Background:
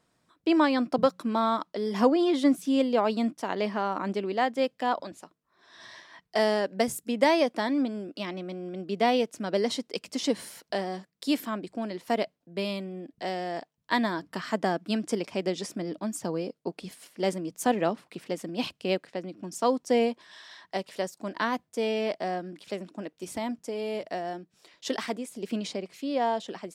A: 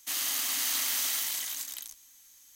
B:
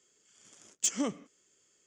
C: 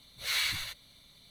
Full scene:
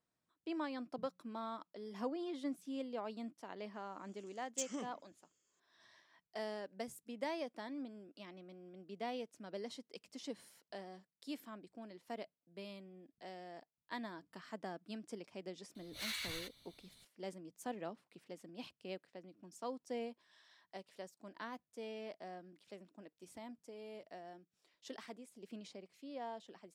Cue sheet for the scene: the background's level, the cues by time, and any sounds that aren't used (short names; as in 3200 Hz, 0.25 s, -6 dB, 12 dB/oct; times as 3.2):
background -18.5 dB
3.74 add B -12 dB
15.75 add C -7.5 dB + limiter -25 dBFS
not used: A